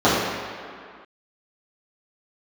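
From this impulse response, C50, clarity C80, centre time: −1.0 dB, 1.0 dB, 114 ms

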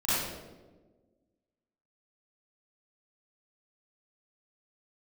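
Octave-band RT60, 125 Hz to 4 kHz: 1.6, 1.8, 1.6, 1.1, 0.85, 0.75 seconds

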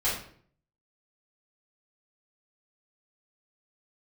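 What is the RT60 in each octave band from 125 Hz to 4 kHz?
0.75, 0.65, 0.60, 0.50, 0.50, 0.40 seconds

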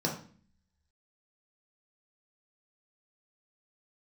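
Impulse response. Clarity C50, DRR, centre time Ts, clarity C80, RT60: 7.0 dB, −2.0 dB, 24 ms, 11.5 dB, 0.45 s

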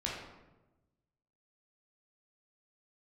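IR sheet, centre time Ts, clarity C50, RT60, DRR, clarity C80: 59 ms, 1.0 dB, 1.1 s, −4.5 dB, 4.0 dB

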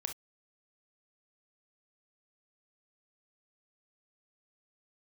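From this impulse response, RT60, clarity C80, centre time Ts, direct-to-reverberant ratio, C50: non-exponential decay, 60.0 dB, 12 ms, 5.0 dB, 10.0 dB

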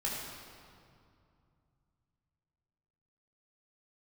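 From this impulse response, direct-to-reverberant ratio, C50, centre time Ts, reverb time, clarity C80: −4.5 dB, 0.0 dB, 106 ms, 2.4 s, 1.5 dB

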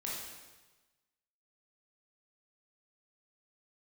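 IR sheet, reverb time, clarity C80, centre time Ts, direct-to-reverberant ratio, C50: 1.2 s, 3.0 dB, 78 ms, −5.5 dB, −0.5 dB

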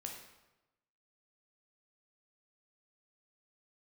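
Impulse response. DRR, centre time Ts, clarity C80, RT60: 0.5 dB, 38 ms, 7.0 dB, 1.0 s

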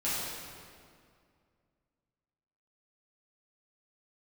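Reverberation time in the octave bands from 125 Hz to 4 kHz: 2.6, 2.6, 2.3, 2.1, 1.9, 1.6 seconds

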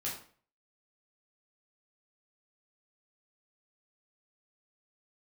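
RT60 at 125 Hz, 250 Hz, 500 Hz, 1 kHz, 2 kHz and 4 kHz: 0.50, 0.45, 0.50, 0.45, 0.40, 0.35 seconds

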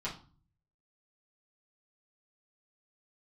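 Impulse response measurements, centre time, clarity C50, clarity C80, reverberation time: 20 ms, 9.5 dB, 15.5 dB, 0.40 s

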